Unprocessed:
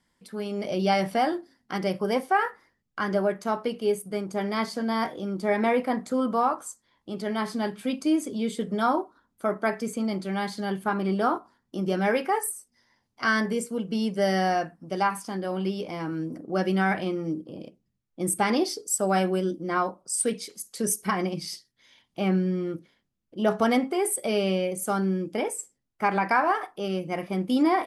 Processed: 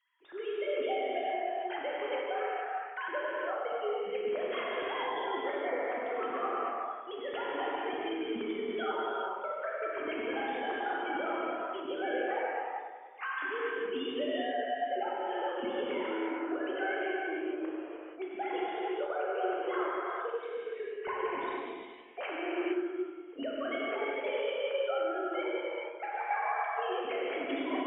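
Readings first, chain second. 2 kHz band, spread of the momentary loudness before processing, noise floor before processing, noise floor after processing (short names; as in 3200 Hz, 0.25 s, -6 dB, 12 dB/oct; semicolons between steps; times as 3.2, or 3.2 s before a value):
-5.0 dB, 10 LU, -76 dBFS, -46 dBFS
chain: sine-wave speech; bell 260 Hz -9.5 dB 1.5 oct; compressor 6:1, threshold -38 dBFS, peak gain reduction 19.5 dB; analogue delay 95 ms, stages 1024, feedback 66%, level -10 dB; non-linear reverb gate 0.49 s flat, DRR -5.5 dB; warbling echo 0.101 s, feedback 67%, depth 76 cents, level -15 dB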